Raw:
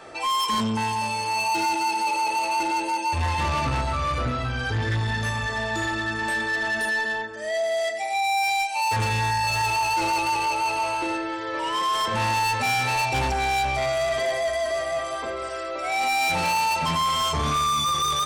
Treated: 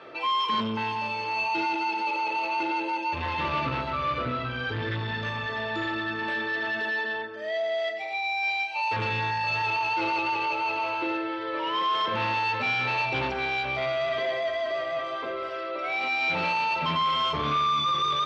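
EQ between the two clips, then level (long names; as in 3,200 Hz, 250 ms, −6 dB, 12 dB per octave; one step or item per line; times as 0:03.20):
loudspeaker in its box 160–3,700 Hz, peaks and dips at 220 Hz −4 dB, 780 Hz −9 dB, 1,800 Hz −4 dB
0.0 dB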